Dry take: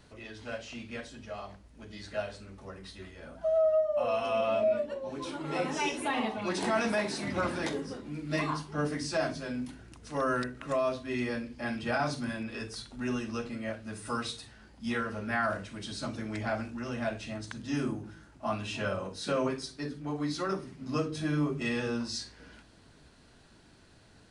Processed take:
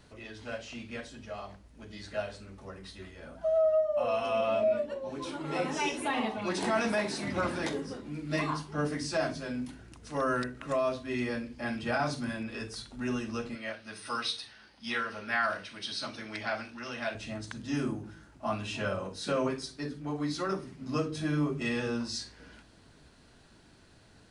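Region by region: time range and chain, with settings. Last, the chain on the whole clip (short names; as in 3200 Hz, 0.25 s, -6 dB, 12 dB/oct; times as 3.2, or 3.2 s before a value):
13.55–17.15 polynomial smoothing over 15 samples + tilt +3.5 dB/oct
whole clip: dry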